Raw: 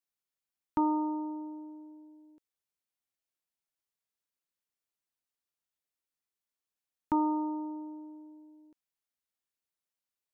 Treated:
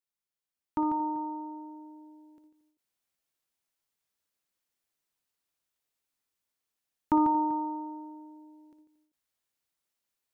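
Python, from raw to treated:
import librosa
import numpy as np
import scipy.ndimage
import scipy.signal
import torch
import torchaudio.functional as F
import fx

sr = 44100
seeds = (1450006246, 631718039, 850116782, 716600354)

y = fx.rider(x, sr, range_db=5, speed_s=2.0)
y = fx.echo_multitap(y, sr, ms=(58, 145, 229, 390), db=(-11.0, -7.5, -19.0, -19.0))
y = fx.end_taper(y, sr, db_per_s=130.0)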